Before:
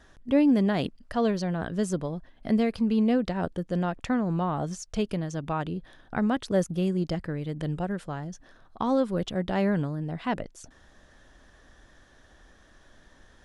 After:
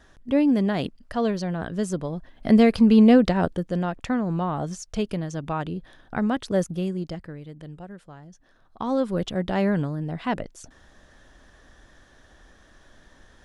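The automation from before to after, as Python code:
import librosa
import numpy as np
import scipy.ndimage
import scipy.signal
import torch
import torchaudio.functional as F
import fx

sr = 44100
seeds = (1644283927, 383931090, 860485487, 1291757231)

y = fx.gain(x, sr, db=fx.line((2.0, 1.0), (2.65, 9.0), (3.24, 9.0), (3.79, 1.5), (6.63, 1.5), (7.69, -10.0), (8.23, -10.0), (9.11, 2.5)))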